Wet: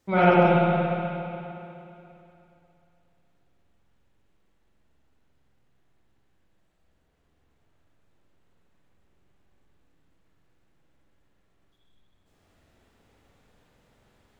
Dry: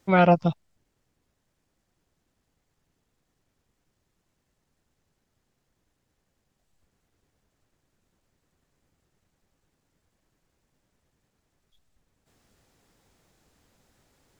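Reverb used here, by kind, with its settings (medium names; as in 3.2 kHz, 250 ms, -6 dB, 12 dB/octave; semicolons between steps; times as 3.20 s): spring tank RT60 2.9 s, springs 45/59 ms, chirp 25 ms, DRR -8.5 dB; trim -5.5 dB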